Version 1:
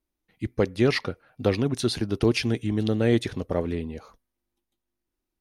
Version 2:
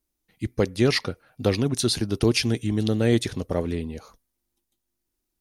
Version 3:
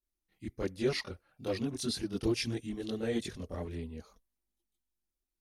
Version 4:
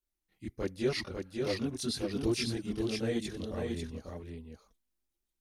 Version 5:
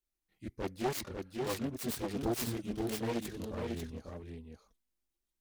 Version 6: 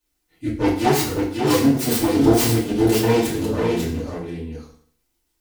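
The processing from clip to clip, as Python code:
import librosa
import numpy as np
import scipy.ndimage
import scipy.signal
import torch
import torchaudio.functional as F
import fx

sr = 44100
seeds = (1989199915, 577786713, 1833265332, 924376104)

y1 = fx.bass_treble(x, sr, bass_db=2, treble_db=9)
y2 = fx.chorus_voices(y1, sr, voices=6, hz=0.96, base_ms=24, depth_ms=3.0, mix_pct=65)
y2 = y2 * 10.0 ** (-9.0 / 20.0)
y3 = y2 + 10.0 ** (-4.5 / 20.0) * np.pad(y2, (int(546 * sr / 1000.0), 0))[:len(y2)]
y4 = fx.self_delay(y3, sr, depth_ms=0.64)
y4 = y4 * 10.0 ** (-2.0 / 20.0)
y5 = fx.rev_fdn(y4, sr, rt60_s=0.55, lf_ratio=1.0, hf_ratio=0.9, size_ms=20.0, drr_db=-9.0)
y5 = y5 * 10.0 ** (7.5 / 20.0)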